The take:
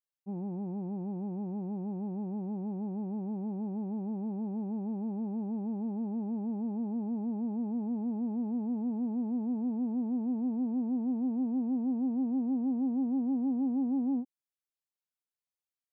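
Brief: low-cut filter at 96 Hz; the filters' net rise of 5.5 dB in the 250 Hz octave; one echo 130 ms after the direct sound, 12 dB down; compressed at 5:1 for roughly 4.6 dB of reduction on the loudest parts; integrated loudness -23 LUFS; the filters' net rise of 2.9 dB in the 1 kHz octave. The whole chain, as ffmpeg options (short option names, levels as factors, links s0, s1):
-af "highpass=96,equalizer=f=250:t=o:g=6,equalizer=f=1000:t=o:g=3.5,acompressor=threshold=0.0447:ratio=5,aecho=1:1:130:0.251,volume=2.37"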